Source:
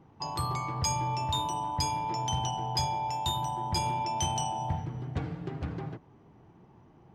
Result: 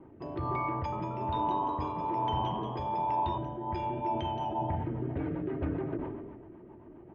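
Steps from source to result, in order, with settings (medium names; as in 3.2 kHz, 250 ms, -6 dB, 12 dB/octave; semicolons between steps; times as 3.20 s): low-pass 2.5 kHz 24 dB/octave; peaking EQ 410 Hz +8.5 dB 1.1 oct; comb 3.2 ms, depth 46%; peak limiter -26 dBFS, peak gain reduction 9 dB; rotary cabinet horn 1.2 Hz, later 7.5 Hz, at 3.57 s; 0.74–3.38 s: frequency-shifting echo 182 ms, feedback 37%, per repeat +87 Hz, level -7 dB; decay stretcher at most 36 dB/s; trim +3 dB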